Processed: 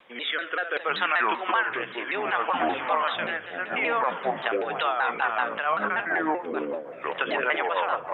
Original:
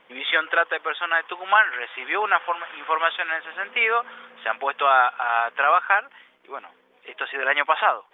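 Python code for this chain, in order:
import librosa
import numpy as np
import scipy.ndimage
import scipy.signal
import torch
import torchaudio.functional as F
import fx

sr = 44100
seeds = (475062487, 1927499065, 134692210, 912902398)

p1 = fx.echo_feedback(x, sr, ms=71, feedback_pct=40, wet_db=-17.5)
p2 = fx.echo_pitch(p1, sr, ms=739, semitones=-6, count=3, db_per_echo=-6.0)
p3 = fx.over_compress(p2, sr, threshold_db=-25.0, ratio=-0.5)
p4 = p2 + (p3 * 10.0 ** (0.0 / 20.0))
p5 = fx.rotary_switch(p4, sr, hz=0.65, then_hz=6.7, switch_at_s=4.37)
p6 = fx.vibrato_shape(p5, sr, shape='saw_down', rate_hz=5.2, depth_cents=160.0)
y = p6 * 10.0 ** (-5.0 / 20.0)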